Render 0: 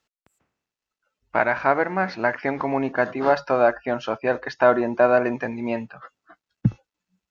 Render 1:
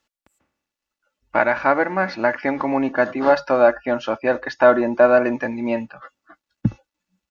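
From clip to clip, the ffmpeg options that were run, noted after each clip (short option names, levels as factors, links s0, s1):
-af "aecho=1:1:3.5:0.41,volume=1.26"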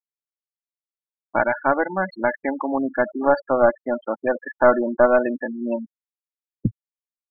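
-af "aeval=exprs='0.841*(cos(1*acos(clip(val(0)/0.841,-1,1)))-cos(1*PI/2))+0.188*(cos(2*acos(clip(val(0)/0.841,-1,1)))-cos(2*PI/2))':c=same,afftfilt=real='re*gte(hypot(re,im),0.158)':imag='im*gte(hypot(re,im),0.158)':win_size=1024:overlap=0.75,volume=0.75"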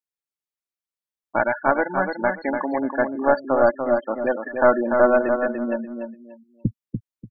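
-af "aecho=1:1:292|584|876:0.501|0.12|0.0289,volume=0.891"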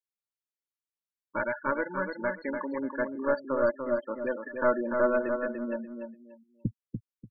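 -af "asuperstop=centerf=740:order=12:qfactor=3.1,volume=0.398"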